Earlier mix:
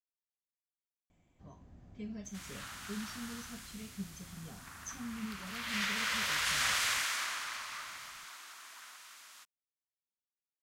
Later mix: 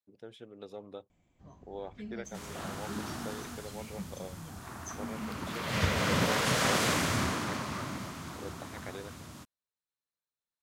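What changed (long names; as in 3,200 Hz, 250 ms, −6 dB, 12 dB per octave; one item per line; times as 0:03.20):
speech: unmuted
second sound: remove Chebyshev high-pass filter 1,700 Hz, order 2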